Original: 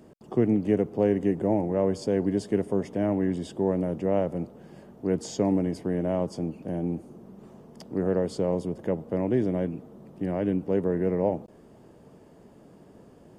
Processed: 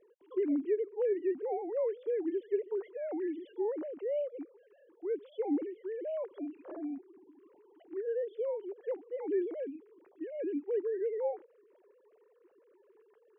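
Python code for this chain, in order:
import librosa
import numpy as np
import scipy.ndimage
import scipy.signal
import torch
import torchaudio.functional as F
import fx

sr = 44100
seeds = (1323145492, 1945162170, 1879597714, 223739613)

y = fx.sine_speech(x, sr)
y = y * 10.0 ** (-8.5 / 20.0)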